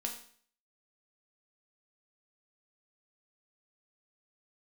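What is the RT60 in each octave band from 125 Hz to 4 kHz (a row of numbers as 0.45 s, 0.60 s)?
0.55 s, 0.50 s, 0.50 s, 0.50 s, 0.50 s, 0.50 s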